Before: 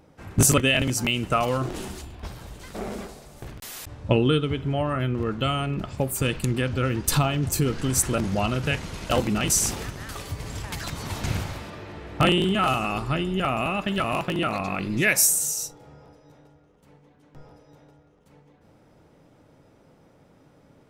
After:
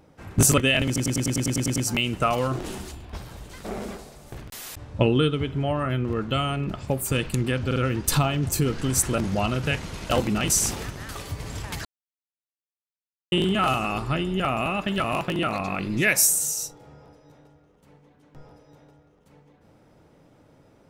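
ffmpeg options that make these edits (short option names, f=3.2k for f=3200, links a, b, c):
-filter_complex "[0:a]asplit=14[a][b][c][d][e][f][g][h][i][j][k][l][m][n];[a]atrim=end=0.962[o];[b]atrim=start=0.858:end=0.962[p];[c]atrim=start=0.858:end=0.962[q];[d]atrim=start=0.858:end=0.962[r];[e]atrim=start=0.858:end=0.962[s];[f]atrim=start=0.858:end=0.962[t];[g]atrim=start=0.858:end=0.962[u];[h]atrim=start=0.858:end=0.962[v];[i]atrim=start=0.858:end=0.962[w];[j]atrim=start=0.858:end=6.812[x];[k]atrim=start=6.758:end=6.812[y];[l]atrim=start=6.758:end=10.85,asetpts=PTS-STARTPTS,afade=t=out:st=4.088:d=0.004:c=hsin[z];[m]atrim=start=10.85:end=12.32,asetpts=PTS-STARTPTS,volume=0[aa];[n]atrim=start=12.32,asetpts=PTS-STARTPTS,afade=t=in:d=0.004:c=hsin[ab];[o][p]acrossfade=d=0.004:c1=hsin:c2=hsin[ac];[ac][q]acrossfade=d=0.004:c1=hsin:c2=hsin[ad];[ad][r]acrossfade=d=0.004:c1=hsin:c2=hsin[ae];[ae][s]acrossfade=d=0.004:c1=hsin:c2=hsin[af];[af][t]acrossfade=d=0.004:c1=hsin:c2=hsin[ag];[ag][u]acrossfade=d=0.004:c1=hsin:c2=hsin[ah];[ah][v]acrossfade=d=0.004:c1=hsin:c2=hsin[ai];[ai][w]acrossfade=d=0.004:c1=hsin:c2=hsin[aj];[aj][x]acrossfade=d=0.004:c1=hsin:c2=hsin[ak];[ak][y]acrossfade=d=0.004:c1=hsin:c2=hsin[al];[z][aa][ab]concat=n=3:v=0:a=1[am];[al][am]acrossfade=d=0.004:c1=hsin:c2=hsin"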